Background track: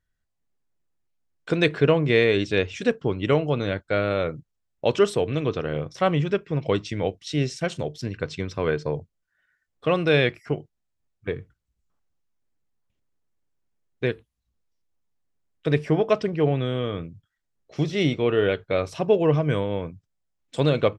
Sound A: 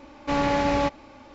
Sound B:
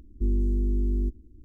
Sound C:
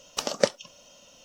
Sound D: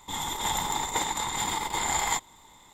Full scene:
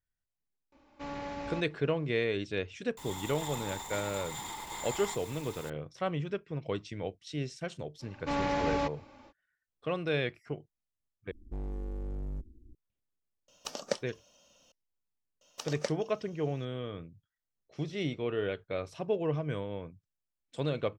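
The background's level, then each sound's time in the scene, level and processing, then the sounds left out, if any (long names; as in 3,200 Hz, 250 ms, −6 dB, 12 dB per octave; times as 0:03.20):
background track −11.5 dB
0:00.72: mix in A −16.5 dB
0:02.97: mix in D −15 dB + converter with a step at zero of −28 dBFS
0:07.99: mix in A −7.5 dB, fades 0.05 s
0:11.31: overwrite with B −5 dB + hard clipping −30 dBFS
0:13.48: mix in C −10.5 dB + notch filter 2,000 Hz, Q 16
0:15.41: mix in C −12 dB + low-shelf EQ 170 Hz −10.5 dB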